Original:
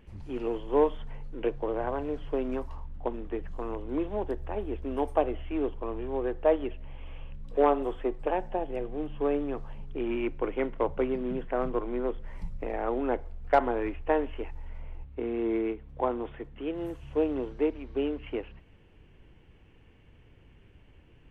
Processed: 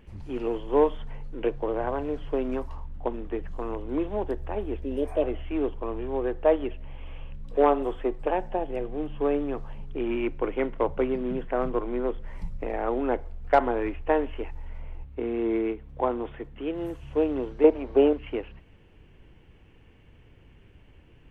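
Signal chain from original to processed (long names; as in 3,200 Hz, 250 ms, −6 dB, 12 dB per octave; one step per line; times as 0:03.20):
0:04.85–0:05.19: healed spectral selection 630–2,500 Hz both
0:17.64–0:18.13: parametric band 650 Hz +13 dB 1.8 octaves
level +2.5 dB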